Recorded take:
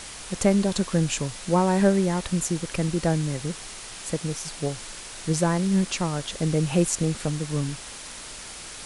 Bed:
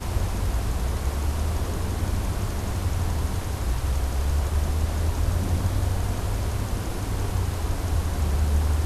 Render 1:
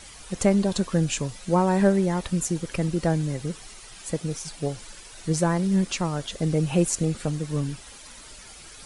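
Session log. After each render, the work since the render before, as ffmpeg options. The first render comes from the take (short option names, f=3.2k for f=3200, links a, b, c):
-af "afftdn=nr=10:nf=-40"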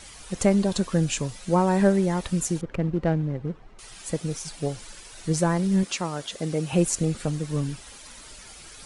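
-filter_complex "[0:a]asettb=1/sr,asplit=3[a][b][c];[a]atrim=end=2.614[d];[b]atrim=start=2.61:end=3.79,asetpts=PTS-STARTPTS,afade=t=in:d=0.004:c=qsin,afade=t=out:st=1.176:d=0.004:c=qsin,adynamicsmooth=sensitivity=1.5:basefreq=1.1k[e];[c]atrim=start=3.786[f];[d][e]acrossfade=d=0.004:c1=hsin:c2=qsin[g];[g][f]acrossfade=d=0.004:c1=qsin:c2=hsin,asettb=1/sr,asplit=3[h][i][j];[h]atrim=end=5.834[k];[i]atrim=start=5.83:end=6.73,asetpts=PTS-STARTPTS,afade=t=in:d=0.004:c=qsin,afade=t=out:st=0.896:d=0.004:c=qsin,highpass=f=260:p=1[l];[j]atrim=start=6.726[m];[k][l]acrossfade=d=0.004:c1=hsin:c2=qsin[n];[n][m]acrossfade=d=0.004:c1=qsin:c2=hsin"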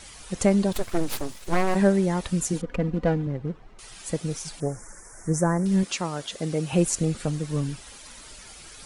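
-filter_complex "[0:a]asplit=3[a][b][c];[a]afade=t=out:st=0.72:d=0.02[d];[b]aeval=exprs='abs(val(0))':c=same,afade=t=in:st=0.72:d=0.02,afade=t=out:st=1.74:d=0.02[e];[c]afade=t=in:st=1.74:d=0.02[f];[d][e][f]amix=inputs=3:normalize=0,asettb=1/sr,asplit=3[g][h][i];[g]atrim=end=2.534[j];[h]atrim=start=2.53:end=3.27,asetpts=PTS-STARTPTS,afade=t=in:d=0.004:c=qsin,afade=t=out:st=0.736:d=0.004:c=qsin,aecho=1:1:4.1:0.7,atrim=end_sample=32634[k];[i]atrim=start=3.266[l];[j][k]acrossfade=d=0.004:c1=hsin:c2=qsin[m];[m][l]acrossfade=d=0.004:c1=qsin:c2=hsin,asettb=1/sr,asplit=3[n][o][p];[n]atrim=end=4.604[q];[o]atrim=start=4.6:end=5.66,asetpts=PTS-STARTPTS,afade=t=in:d=0.004:c=qsin,afade=t=out:st=1.056:d=0.004:c=qsin,asuperstop=centerf=3400:order=8:qfactor=0.89[r];[p]atrim=start=5.656[s];[q][r]acrossfade=d=0.004:c1=hsin:c2=qsin[t];[t][s]acrossfade=d=0.004:c1=qsin:c2=hsin"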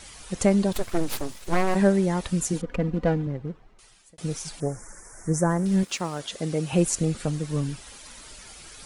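-filter_complex "[0:a]asettb=1/sr,asplit=3[a][b][c];[a]atrim=end=5.504[d];[b]atrim=start=5.5:end=6.2,asetpts=PTS-STARTPTS,afade=t=in:d=0.004:c=qsin,afade=t=out:st=0.696:d=0.004:c=qsin,aeval=exprs='sgn(val(0))*max(abs(val(0))-0.00398,0)':c=same[e];[c]atrim=start=6.196[f];[d][e]acrossfade=d=0.004:c1=hsin:c2=qsin[g];[g][f]acrossfade=d=0.004:c1=qsin:c2=hsin,asplit=2[h][i];[h]atrim=end=4.18,asetpts=PTS-STARTPTS,afade=t=out:st=3.21:d=0.97[j];[i]atrim=start=4.18,asetpts=PTS-STARTPTS,afade=t=in:d=0.004:c=hsin[k];[j][k]concat=n=2:v=0:a=1"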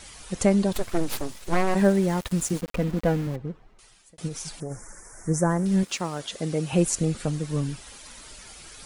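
-filter_complex "[0:a]asettb=1/sr,asplit=3[a][b][c];[a]atrim=end=1.774[d];[b]atrim=start=1.77:end=3.36,asetpts=PTS-STARTPTS,afade=t=in:d=0.004:c=qsin,afade=t=out:st=1.586:d=0.004:c=qsin,aeval=exprs='val(0)*gte(abs(val(0)),0.0178)':c=same[e];[c]atrim=start=3.356[f];[d][e]acrossfade=d=0.004:c1=hsin:c2=qsin[g];[g][f]acrossfade=d=0.004:c1=qsin:c2=hsin,asplit=3[h][i][j];[h]afade=t=out:st=4.27:d=0.02[k];[i]acompressor=threshold=-29dB:ratio=6:attack=3.2:release=140:knee=1:detection=peak,afade=t=in:st=4.27:d=0.02,afade=t=out:st=4.7:d=0.02[l];[j]afade=t=in:st=4.7:d=0.02[m];[k][l][m]amix=inputs=3:normalize=0"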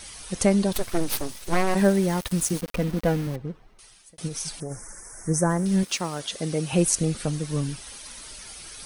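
-af "highshelf=f=3.9k:g=7,bandreject=f=7.2k:w=7.8"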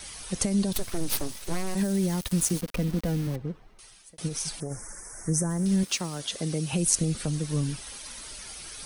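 -filter_complex "[0:a]acrossover=split=5100[a][b];[a]alimiter=limit=-16dB:level=0:latency=1[c];[c][b]amix=inputs=2:normalize=0,acrossover=split=300|3000[d][e][f];[e]acompressor=threshold=-35dB:ratio=6[g];[d][g][f]amix=inputs=3:normalize=0"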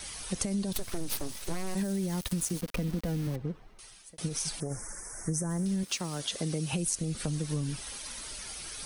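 -af "acompressor=threshold=-28dB:ratio=6"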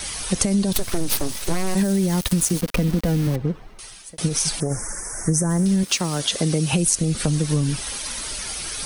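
-af "volume=11.5dB"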